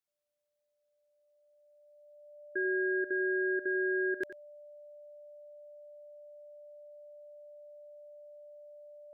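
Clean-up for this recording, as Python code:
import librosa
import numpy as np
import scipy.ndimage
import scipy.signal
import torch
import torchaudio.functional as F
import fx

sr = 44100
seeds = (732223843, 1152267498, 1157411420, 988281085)

y = fx.notch(x, sr, hz=590.0, q=30.0)
y = fx.fix_echo_inverse(y, sr, delay_ms=91, level_db=-13.5)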